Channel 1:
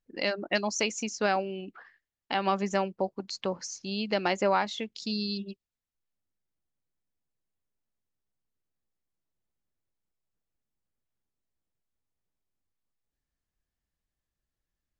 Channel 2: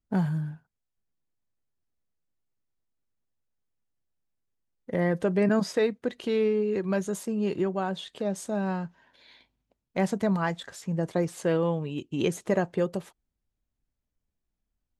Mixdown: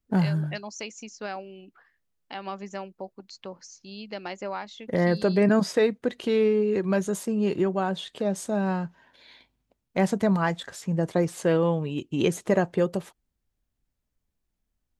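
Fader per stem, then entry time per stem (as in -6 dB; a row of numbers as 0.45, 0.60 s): -8.0, +3.0 dB; 0.00, 0.00 s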